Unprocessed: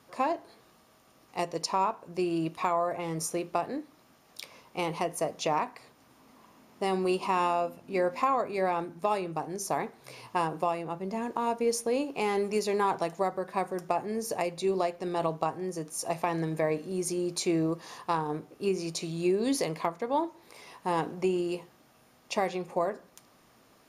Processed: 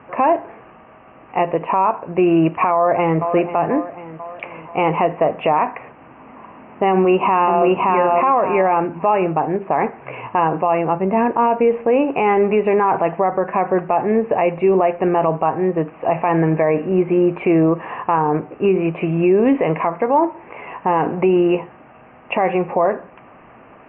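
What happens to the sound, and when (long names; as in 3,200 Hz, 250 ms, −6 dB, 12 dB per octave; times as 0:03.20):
0:02.72–0:03.33: delay throw 490 ms, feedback 55%, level −12.5 dB
0:06.90–0:07.63: delay throw 570 ms, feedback 20%, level −1.5 dB
whole clip: Butterworth low-pass 2,800 Hz 96 dB per octave; parametric band 790 Hz +4.5 dB 1.2 octaves; boost into a limiter +21.5 dB; level −6 dB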